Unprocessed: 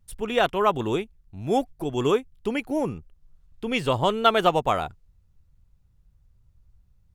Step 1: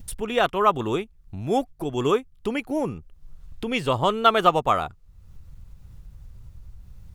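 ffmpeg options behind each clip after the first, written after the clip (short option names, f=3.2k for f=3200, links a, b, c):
-af "acompressor=mode=upward:threshold=-27dB:ratio=2.5,adynamicequalizer=threshold=0.01:dfrequency=1200:dqfactor=5.5:tfrequency=1200:tqfactor=5.5:attack=5:release=100:ratio=0.375:range=3.5:mode=boostabove:tftype=bell"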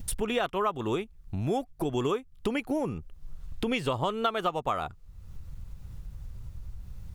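-af "acompressor=threshold=-28dB:ratio=6,volume=2.5dB"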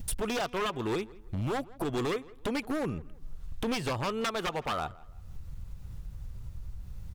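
-filter_complex "[0:a]aeval=exprs='0.0562*(abs(mod(val(0)/0.0562+3,4)-2)-1)':c=same,asplit=2[a][b];[b]adelay=166,lowpass=f=2.8k:p=1,volume=-21dB,asplit=2[c][d];[d]adelay=166,lowpass=f=2.8k:p=1,volume=0.34,asplit=2[e][f];[f]adelay=166,lowpass=f=2.8k:p=1,volume=0.34[g];[a][c][e][g]amix=inputs=4:normalize=0"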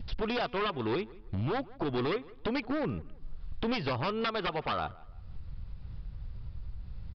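-af "aresample=11025,aresample=44100"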